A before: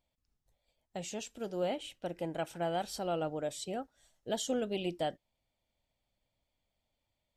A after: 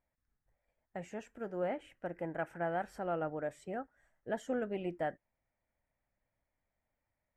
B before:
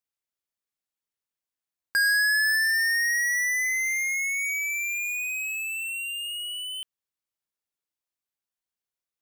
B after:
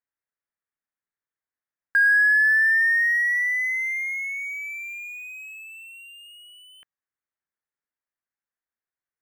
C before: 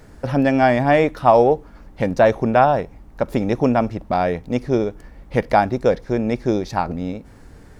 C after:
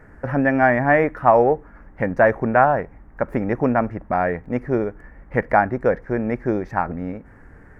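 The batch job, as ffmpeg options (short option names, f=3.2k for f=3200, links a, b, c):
-af "highshelf=f=2.6k:t=q:w=3:g=-13,volume=-2.5dB"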